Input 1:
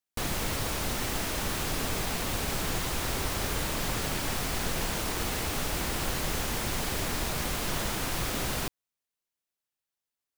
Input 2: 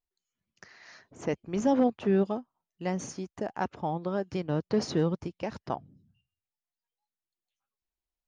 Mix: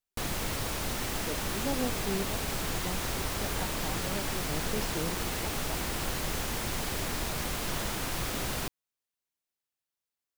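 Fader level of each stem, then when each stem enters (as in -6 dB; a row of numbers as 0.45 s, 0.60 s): -2.0 dB, -9.5 dB; 0.00 s, 0.00 s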